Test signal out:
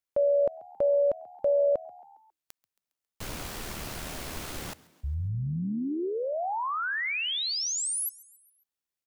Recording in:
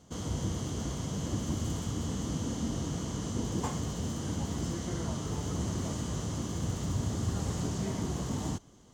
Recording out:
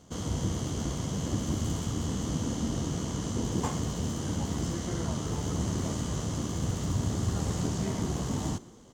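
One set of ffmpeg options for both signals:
-filter_complex "[0:a]tremolo=f=76:d=0.333,asplit=5[a][b][c][d][e];[b]adelay=136,afreqshift=77,volume=-22dB[f];[c]adelay=272,afreqshift=154,volume=-27.4dB[g];[d]adelay=408,afreqshift=231,volume=-32.7dB[h];[e]adelay=544,afreqshift=308,volume=-38.1dB[i];[a][f][g][h][i]amix=inputs=5:normalize=0,volume=4dB"

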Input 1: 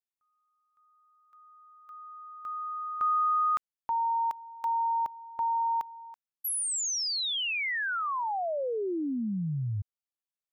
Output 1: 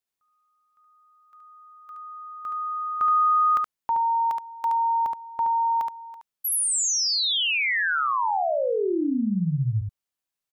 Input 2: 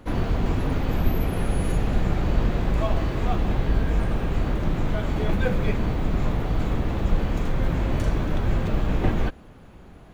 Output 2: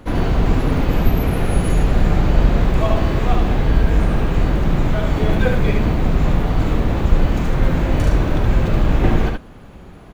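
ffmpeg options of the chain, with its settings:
-af "aecho=1:1:72:0.631,volume=5.5dB"

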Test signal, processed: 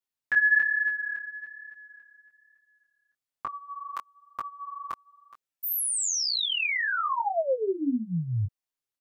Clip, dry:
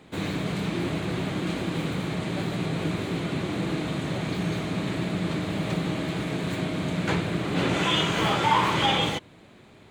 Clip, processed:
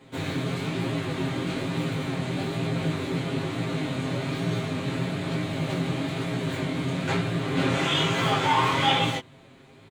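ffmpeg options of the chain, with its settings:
-af "aecho=1:1:7.5:0.99,flanger=delay=17:depth=6.4:speed=1.1"

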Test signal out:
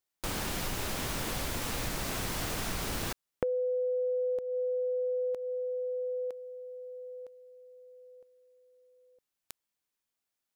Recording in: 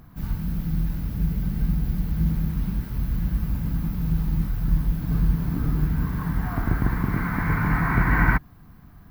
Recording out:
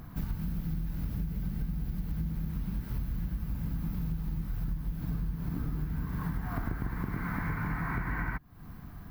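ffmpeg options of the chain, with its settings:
-af "acompressor=threshold=-32dB:ratio=12,volume=2.5dB"

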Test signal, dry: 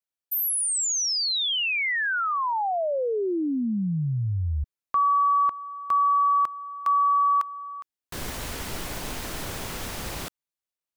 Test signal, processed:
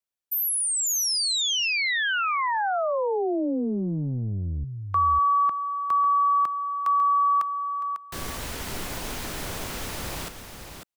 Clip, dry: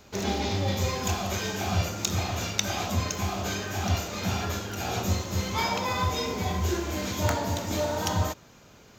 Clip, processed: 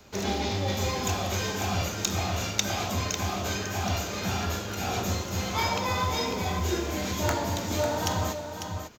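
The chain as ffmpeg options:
-filter_complex "[0:a]aecho=1:1:548:0.398,acrossover=split=290|580|2300[a][b][c][d];[a]asoftclip=type=tanh:threshold=-25dB[e];[e][b][c][d]amix=inputs=4:normalize=0"

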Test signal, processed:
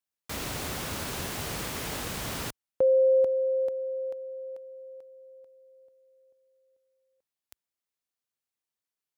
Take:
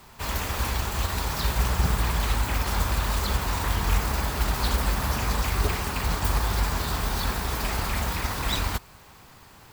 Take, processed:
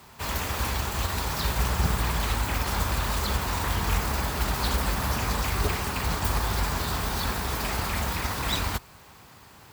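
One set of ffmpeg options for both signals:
-af "highpass=54"

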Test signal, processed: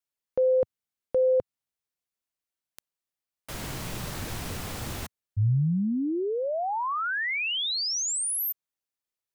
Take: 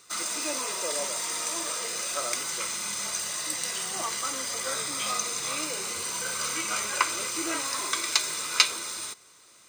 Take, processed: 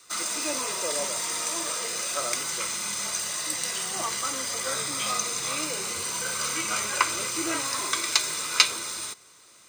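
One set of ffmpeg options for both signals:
-af "adynamicequalizer=threshold=0.00316:dfrequency=110:dqfactor=0.9:tfrequency=110:tqfactor=0.9:attack=5:release=100:ratio=0.375:range=3.5:mode=boostabove:tftype=bell,volume=1.5dB"

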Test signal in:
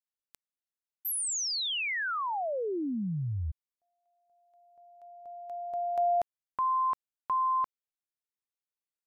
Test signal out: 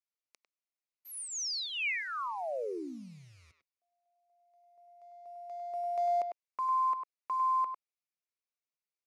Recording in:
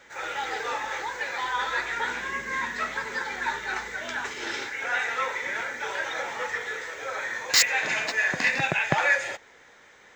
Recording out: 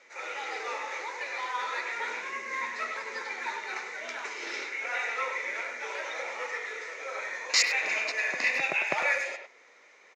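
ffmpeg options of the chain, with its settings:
-filter_complex "[0:a]acrusher=bits=7:mode=log:mix=0:aa=0.000001,highpass=420,equalizer=f=830:t=q:w=4:g=-6,equalizer=f=1.6k:t=q:w=4:g=-10,equalizer=f=2.3k:t=q:w=4:g=5,equalizer=f=3.3k:t=q:w=4:g=-8,equalizer=f=7.9k:t=q:w=4:g=-9,lowpass=f=9.1k:w=0.5412,lowpass=f=9.1k:w=1.3066,asplit=2[a][b];[b]adelay=100,highpass=300,lowpass=3.4k,asoftclip=type=hard:threshold=-18dB,volume=-6dB[c];[a][c]amix=inputs=2:normalize=0,volume=-2dB"

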